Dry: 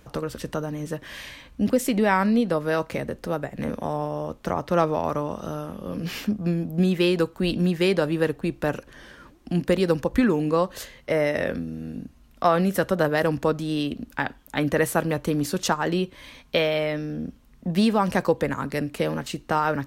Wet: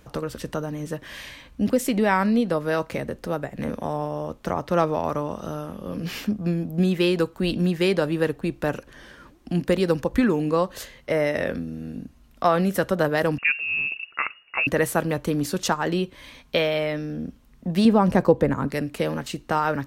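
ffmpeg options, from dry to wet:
-filter_complex "[0:a]asettb=1/sr,asplit=3[a][b][c];[a]atrim=end=13.384[d];[b]atrim=start=13.38:end=14.67,asetpts=PTS-STARTPTS,afade=t=in:d=0.004:c=qsin,afade=t=out:st=1.286:d=0.004:c=qsin,lowpass=f=2.5k:t=q:w=0.5098,lowpass=f=2.5k:t=q:w=0.6013,lowpass=f=2.5k:t=q:w=0.9,lowpass=f=2.5k:t=q:w=2.563,afreqshift=-2900[e];[c]atrim=start=14.666[f];[d][e]acrossfade=d=0.004:c1=hsin:c2=qsin[g];[g][f]acrossfade=d=0.004:c1=qsin:c2=hsin,asettb=1/sr,asplit=3[h][i][j];[h]atrim=end=17.854[k];[i]atrim=start=17.85:end=18.68,asetpts=PTS-STARTPTS,afade=t=in:d=0.004:c=qsin,afade=t=out:st=0.826:d=0.004:c=qsin,tiltshelf=f=1.1k:g=6[l];[j]atrim=start=18.676[m];[k][l]acrossfade=d=0.004:c1=hsin:c2=qsin[n];[n][m]acrossfade=d=0.004:c1=qsin:c2=hsin"

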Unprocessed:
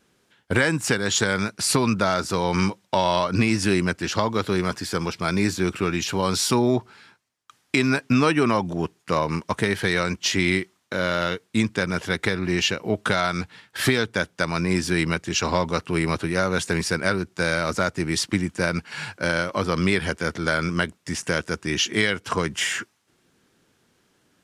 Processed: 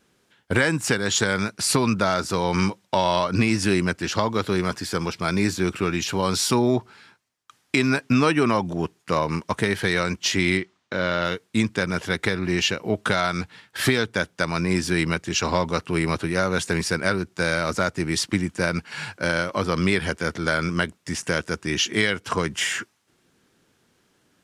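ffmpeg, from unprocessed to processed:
-filter_complex "[0:a]asettb=1/sr,asplit=3[a][b][c];[a]atrim=end=10.574[d];[b]atrim=start=10.57:end=11.25,asetpts=PTS-STARTPTS,afade=t=in:d=0.004:c=qsin,afade=t=out:st=0.676:d=0.004:c=qsin,lowpass=5.1k[e];[c]atrim=start=11.246[f];[d][e]acrossfade=d=0.004:c1=hsin:c2=qsin[g];[g][f]acrossfade=d=0.004:c1=qsin:c2=hsin"

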